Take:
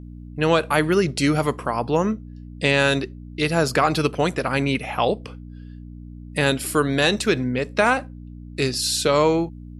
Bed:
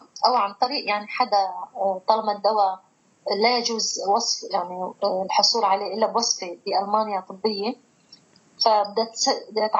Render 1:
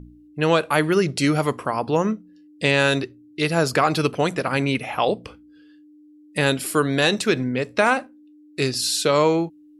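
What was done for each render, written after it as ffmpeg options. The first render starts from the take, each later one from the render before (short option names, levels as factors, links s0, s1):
-af "bandreject=f=60:t=h:w=4,bandreject=f=120:t=h:w=4,bandreject=f=180:t=h:w=4,bandreject=f=240:t=h:w=4"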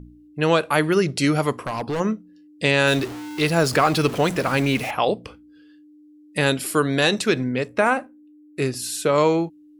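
-filter_complex "[0:a]asplit=3[s0][s1][s2];[s0]afade=t=out:st=1.57:d=0.02[s3];[s1]asoftclip=type=hard:threshold=0.0794,afade=t=in:st=1.57:d=0.02,afade=t=out:st=1.99:d=0.02[s4];[s2]afade=t=in:st=1.99:d=0.02[s5];[s3][s4][s5]amix=inputs=3:normalize=0,asettb=1/sr,asplit=3[s6][s7][s8];[s6]atrim=end=2.874[s9];[s7]atrim=start=2.87:end=4.91,asetpts=PTS-STARTPTS,afade=t=in:d=0.004:c=qsin,afade=t=out:st=2.036:d=0.004:c=qsin,aeval=exprs='val(0)+0.5*0.0376*sgn(val(0))':c=same[s10];[s8]atrim=start=4.906[s11];[s9][s10]acrossfade=d=0.004:c1=hsin:c2=qsin[s12];[s12][s11]acrossfade=d=0.004:c1=qsin:c2=hsin,asettb=1/sr,asplit=3[s13][s14][s15];[s13]atrim=end=7.684[s16];[s14]atrim=start=7.68:end=9.18,asetpts=PTS-STARTPTS,afade=t=in:d=0.004:c=qsin,afade=t=out:st=1.496:d=0.004:c=qsin,equalizer=f=4400:w=1.1:g=-11[s17];[s15]atrim=start=9.176[s18];[s16][s17]acrossfade=d=0.004:c1=hsin:c2=qsin[s19];[s19][s18]acrossfade=d=0.004:c1=qsin:c2=hsin"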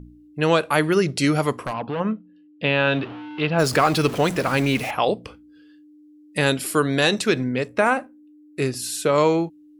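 -filter_complex "[0:a]asplit=3[s0][s1][s2];[s0]afade=t=out:st=1.72:d=0.02[s3];[s1]highpass=110,equalizer=f=370:t=q:w=4:g=-8,equalizer=f=2000:t=q:w=4:g=-6,equalizer=f=3000:t=q:w=4:g=3,lowpass=f=3100:w=0.5412,lowpass=f=3100:w=1.3066,afade=t=in:st=1.72:d=0.02,afade=t=out:st=3.58:d=0.02[s4];[s2]afade=t=in:st=3.58:d=0.02[s5];[s3][s4][s5]amix=inputs=3:normalize=0"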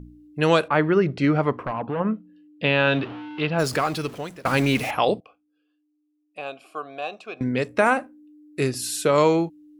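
-filter_complex "[0:a]asettb=1/sr,asplit=3[s0][s1][s2];[s0]atrim=end=0.684[s3];[s1]atrim=start=0.68:end=2.14,asetpts=PTS-STARTPTS,afade=t=in:d=0.004:c=qsin,afade=t=out:st=1.456:d=0.004:c=qsin,lowpass=2000[s4];[s2]atrim=start=2.136[s5];[s3][s4]acrossfade=d=0.004:c1=hsin:c2=qsin[s6];[s6][s5]acrossfade=d=0.004:c1=qsin:c2=hsin,asettb=1/sr,asplit=3[s7][s8][s9];[s7]atrim=end=5.204[s10];[s8]atrim=start=5.2:end=7.41,asetpts=PTS-STARTPTS,afade=t=in:d=0.004:c=qsin,afade=t=out:st=2.206:d=0.004:c=qsin,asplit=3[s11][s12][s13];[s11]bandpass=f=730:t=q:w=8,volume=1[s14];[s12]bandpass=f=1090:t=q:w=8,volume=0.501[s15];[s13]bandpass=f=2440:t=q:w=8,volume=0.355[s16];[s14][s15][s16]amix=inputs=3:normalize=0[s17];[s9]atrim=start=7.406[s18];[s10][s17]acrossfade=d=0.004:c1=hsin:c2=qsin[s19];[s19][s18]acrossfade=d=0.004:c1=qsin:c2=hsin,asplit=2[s20][s21];[s20]atrim=end=4.45,asetpts=PTS-STARTPTS,afade=t=out:st=3.18:d=1.27:silence=0.0707946[s22];[s21]atrim=start=4.45,asetpts=PTS-STARTPTS,afade=t=in:d=0.004:c=hsin:silence=0.0707946[s23];[s22][s23]concat=n=2:v=0:a=1"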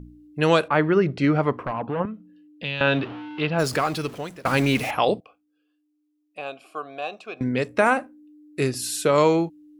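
-filter_complex "[0:a]asettb=1/sr,asplit=3[s0][s1][s2];[s0]atrim=end=2.054[s3];[s1]atrim=start=2.05:end=2.81,asetpts=PTS-STARTPTS,afade=t=in:d=0.004:c=qsin,afade=t=out:st=0.756:d=0.004:c=qsin,acrossover=split=120|3000[s4][s5][s6];[s5]acompressor=threshold=0.0178:ratio=4:attack=3.2:release=140:knee=2.83:detection=peak[s7];[s4][s7][s6]amix=inputs=3:normalize=0[s8];[s2]atrim=start=2.806[s9];[s3][s8]acrossfade=d=0.004:c1=hsin:c2=qsin[s10];[s10][s9]acrossfade=d=0.004:c1=qsin:c2=hsin"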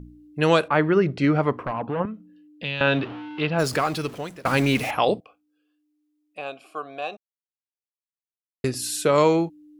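-filter_complex "[0:a]asplit=3[s0][s1][s2];[s0]atrim=end=7.17,asetpts=PTS-STARTPTS,afade=t=out:st=7.166:d=0.004:c=hsin[s3];[s1]atrim=start=7.17:end=8.64,asetpts=PTS-STARTPTS,volume=0[s4];[s2]atrim=start=8.64,asetpts=PTS-STARTPTS,afade=t=in:d=0.004:c=hsin[s5];[s3][s4][s5]concat=n=3:v=0:a=1"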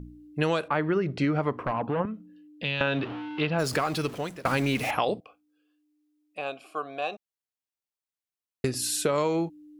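-af "acompressor=threshold=0.0794:ratio=6"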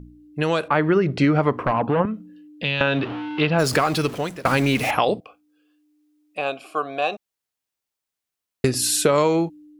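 -af "dynaudnorm=f=150:g=7:m=2.51"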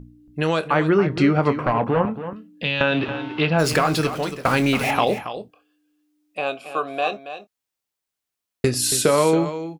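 -filter_complex "[0:a]asplit=2[s0][s1];[s1]adelay=25,volume=0.251[s2];[s0][s2]amix=inputs=2:normalize=0,asplit=2[s3][s4];[s4]aecho=0:1:278:0.266[s5];[s3][s5]amix=inputs=2:normalize=0"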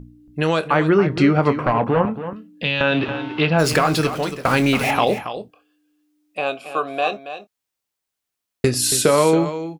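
-af "volume=1.26,alimiter=limit=0.708:level=0:latency=1"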